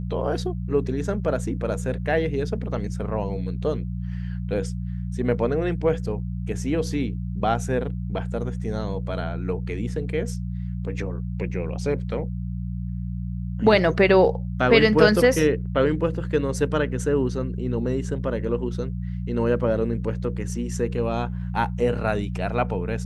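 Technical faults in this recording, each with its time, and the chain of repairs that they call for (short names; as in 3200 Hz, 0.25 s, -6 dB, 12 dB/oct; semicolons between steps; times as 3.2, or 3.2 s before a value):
hum 60 Hz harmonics 3 -29 dBFS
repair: de-hum 60 Hz, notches 3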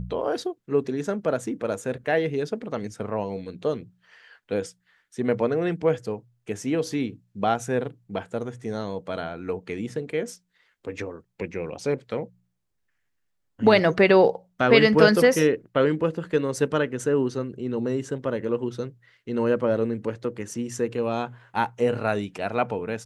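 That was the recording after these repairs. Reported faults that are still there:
none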